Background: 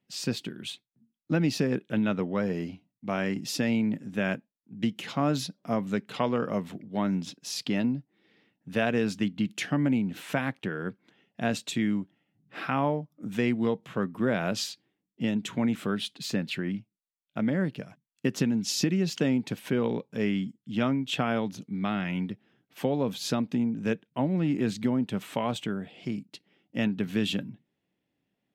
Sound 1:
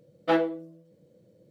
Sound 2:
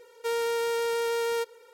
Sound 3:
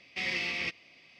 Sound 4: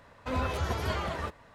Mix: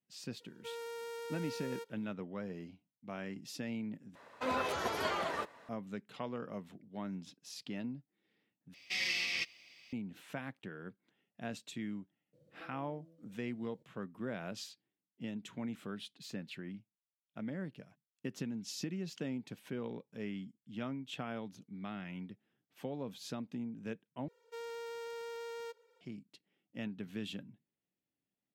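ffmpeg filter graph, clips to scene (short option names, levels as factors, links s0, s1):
-filter_complex "[2:a]asplit=2[s0][s1];[0:a]volume=0.2[s2];[s0]highpass=f=110:w=0.5412,highpass=f=110:w=1.3066[s3];[4:a]highpass=270[s4];[3:a]crystalizer=i=6.5:c=0[s5];[1:a]acompressor=threshold=0.00447:ratio=6:attack=3.2:release=140:knee=1:detection=peak[s6];[s1]equalizer=f=11000:w=1.7:g=-12[s7];[s2]asplit=4[s8][s9][s10][s11];[s8]atrim=end=4.154[s12];[s4]atrim=end=1.54,asetpts=PTS-STARTPTS,volume=0.891[s13];[s9]atrim=start=5.686:end=8.744[s14];[s5]atrim=end=1.19,asetpts=PTS-STARTPTS,volume=0.282[s15];[s10]atrim=start=9.926:end=24.284[s16];[s7]atrim=end=1.73,asetpts=PTS-STARTPTS,volume=0.158[s17];[s11]atrim=start=26.006[s18];[s3]atrim=end=1.73,asetpts=PTS-STARTPTS,volume=0.158,afade=t=in:d=0.004:c=hsin,afade=t=out:st=1.726:d=0.004:c=hsin,adelay=400[s19];[s6]atrim=end=1.5,asetpts=PTS-STARTPTS,volume=0.335,afade=t=in:d=0.004:c=hsin,afade=t=out:st=1.496:d=0.004:c=hsin,adelay=12330[s20];[s12][s13]acrossfade=d=0.004:c1=hsin:c2=hsin[s21];[s21][s14]acrossfade=d=0.004:c1=hsin:c2=hsin[s22];[s22][s15]acrossfade=d=0.004:c1=hsin:c2=hsin[s23];[s23][s16]acrossfade=d=0.004:c1=hsin:c2=hsin[s24];[s24][s17]acrossfade=d=0.004:c1=hsin:c2=hsin[s25];[s25][s18]acrossfade=d=0.004:c1=hsin:c2=hsin[s26];[s26][s19][s20]amix=inputs=3:normalize=0"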